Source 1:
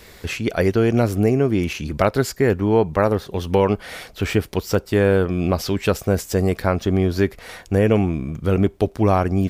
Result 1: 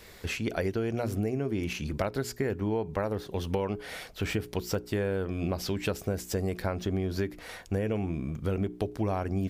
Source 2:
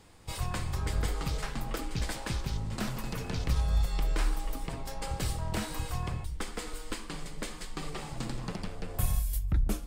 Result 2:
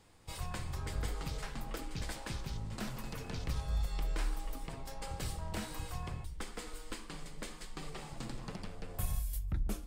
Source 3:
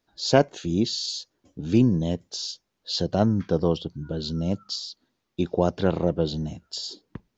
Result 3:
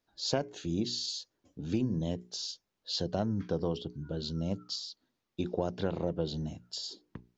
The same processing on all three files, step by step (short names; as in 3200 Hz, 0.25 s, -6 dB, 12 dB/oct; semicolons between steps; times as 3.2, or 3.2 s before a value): notches 60/120/180/240/300/360/420 Hz; dynamic EQ 1200 Hz, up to -4 dB, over -48 dBFS, Q 7.4; compressor 6:1, threshold -20 dBFS; gain -6 dB